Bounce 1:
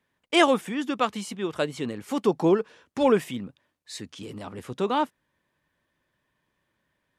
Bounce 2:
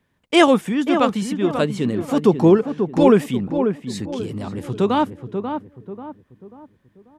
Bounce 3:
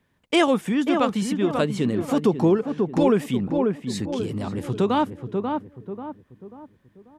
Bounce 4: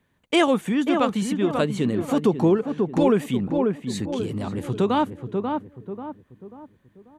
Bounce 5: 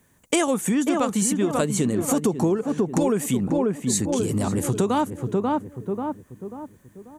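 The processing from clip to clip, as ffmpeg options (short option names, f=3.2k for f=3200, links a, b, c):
-filter_complex "[0:a]lowshelf=f=280:g=10.5,asplit=2[a][b];[b]adelay=539,lowpass=f=1.3k:p=1,volume=-6.5dB,asplit=2[c][d];[d]adelay=539,lowpass=f=1.3k:p=1,volume=0.41,asplit=2[e][f];[f]adelay=539,lowpass=f=1.3k:p=1,volume=0.41,asplit=2[g][h];[h]adelay=539,lowpass=f=1.3k:p=1,volume=0.41,asplit=2[i][j];[j]adelay=539,lowpass=f=1.3k:p=1,volume=0.41[k];[c][e][g][i][k]amix=inputs=5:normalize=0[l];[a][l]amix=inputs=2:normalize=0,volume=3.5dB"
-af "acompressor=threshold=-19dB:ratio=2"
-af "bandreject=f=5.2k:w=7.7"
-af "highshelf=f=5.1k:t=q:w=1.5:g=11.5,acompressor=threshold=-26dB:ratio=4,volume=6.5dB"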